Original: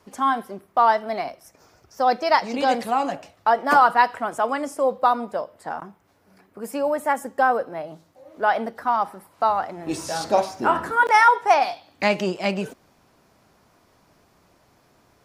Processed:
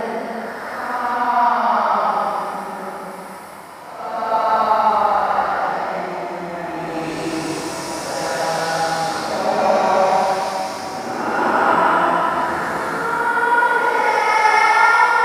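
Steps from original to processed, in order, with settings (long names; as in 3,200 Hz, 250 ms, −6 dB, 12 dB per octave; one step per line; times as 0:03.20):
compressor on every frequency bin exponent 0.6
extreme stretch with random phases 5.8×, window 0.25 s, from 0:08.66
level −1 dB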